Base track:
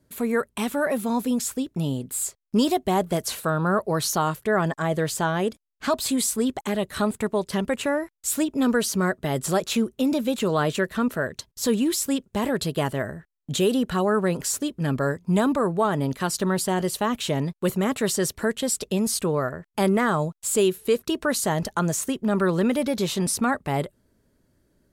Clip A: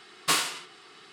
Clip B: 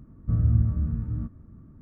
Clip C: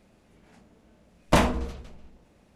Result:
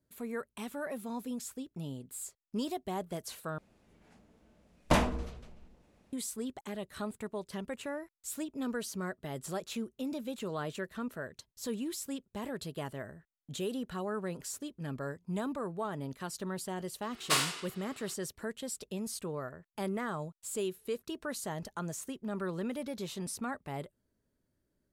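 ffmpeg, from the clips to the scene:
-filter_complex "[0:a]volume=-14.5dB,asplit=2[a][b];[a]atrim=end=3.584[c];[3:a]atrim=end=2.55,asetpts=PTS-STARTPTS,volume=-6dB[d];[b]atrim=start=6.126[e];[1:a]atrim=end=1.12,asetpts=PTS-STARTPTS,volume=-4dB,afade=t=in:d=0.004:c=hsin,afade=t=out:st=1.116:d=0.004:c=hsin,adelay=17020[f];[c][d]acrossfade=d=0.004:c1=hsin:c2=hsin[g];[g][e]acrossfade=d=0.004:c1=hsin:c2=hsin[h];[h][f]amix=inputs=2:normalize=0"

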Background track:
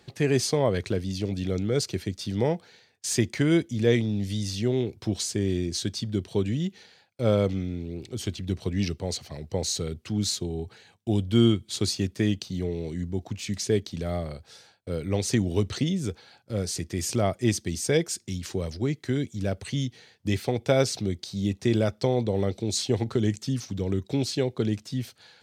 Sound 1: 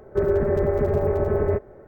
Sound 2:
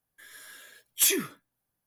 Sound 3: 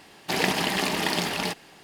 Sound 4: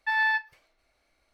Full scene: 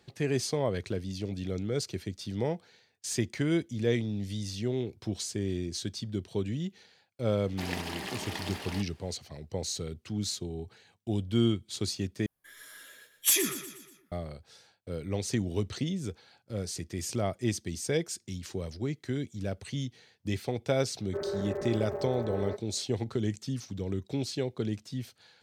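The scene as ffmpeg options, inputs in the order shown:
-filter_complex "[0:a]volume=-6dB[a];[2:a]aecho=1:1:120|240|360|480|600:0.282|0.138|0.0677|0.0332|0.0162[b];[1:a]highpass=f=440:p=1[c];[a]asplit=2[d][e];[d]atrim=end=12.264[f];[b]atrim=end=1.86,asetpts=PTS-STARTPTS,volume=-1.5dB[g];[e]atrim=start=14.116[h];[3:a]atrim=end=1.83,asetpts=PTS-STARTPTS,volume=-12.5dB,afade=t=in:d=0.004:c=hsin,afade=t=out:st=1.826:d=0.004:c=hsin,adelay=7290[i];[c]atrim=end=1.87,asetpts=PTS-STARTPTS,volume=-9.5dB,afade=t=in:d=0.004:c=hsin,afade=t=out:st=1.866:d=0.004:c=hsin,adelay=20980[j];[f][g]acrossfade=d=0.004:c1=hsin:c2=hsin[k];[k][h]acrossfade=d=0.004:c1=hsin:c2=hsin[l];[l][i][j]amix=inputs=3:normalize=0"

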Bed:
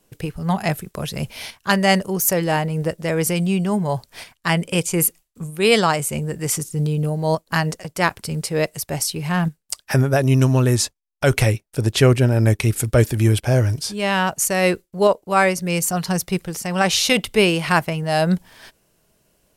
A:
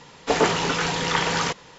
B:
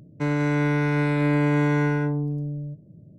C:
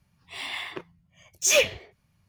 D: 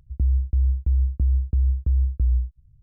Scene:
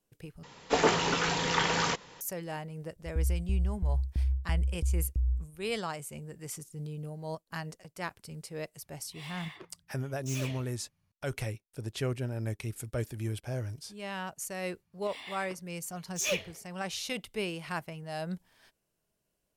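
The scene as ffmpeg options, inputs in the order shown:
-filter_complex "[3:a]asplit=2[a][b];[0:a]volume=-18.5dB[c];[a]asoftclip=type=tanh:threshold=-29.5dB[d];[c]asplit=2[e][f];[e]atrim=end=0.434[g];[1:a]atrim=end=1.78,asetpts=PTS-STARTPTS,volume=-5dB[h];[f]atrim=start=2.206[i];[4:a]atrim=end=2.82,asetpts=PTS-STARTPTS,volume=-8.5dB,afade=t=in:d=0.004:c=hsin,afade=t=out:st=2.816:d=0.004:c=hsin,adelay=2960[j];[d]atrim=end=2.28,asetpts=PTS-STARTPTS,volume=-9dB,afade=t=in:d=0.004:c=hsin,afade=t=out:st=2.276:d=0.004:c=hsin,adelay=8840[k];[b]atrim=end=2.28,asetpts=PTS-STARTPTS,volume=-11dB,afade=t=in:d=0.004:c=hsin,afade=t=out:st=2.276:d=0.004:c=hsin,adelay=14740[l];[g][h]acrossfade=d=0.004:c1=hsin:c2=hsin[m];[m][i]acrossfade=d=0.004:c1=hsin:c2=hsin[n];[n][j][k][l]amix=inputs=4:normalize=0"

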